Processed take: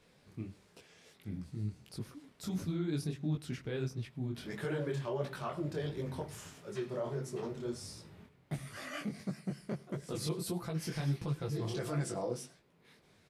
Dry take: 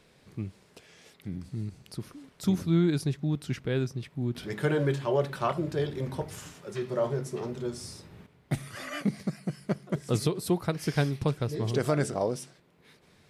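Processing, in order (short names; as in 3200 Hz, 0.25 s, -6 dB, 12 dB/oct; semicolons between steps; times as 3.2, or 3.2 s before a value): 10.12–12.32 comb 5.9 ms, depth 66%; limiter -22.5 dBFS, peak gain reduction 11 dB; echo 0.1 s -23 dB; detuned doubles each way 52 cents; gain -1.5 dB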